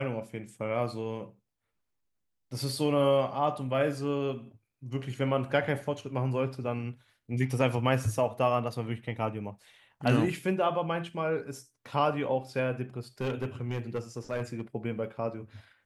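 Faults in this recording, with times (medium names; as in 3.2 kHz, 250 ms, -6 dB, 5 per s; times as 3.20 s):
13.21–14.61 s: clipped -27 dBFS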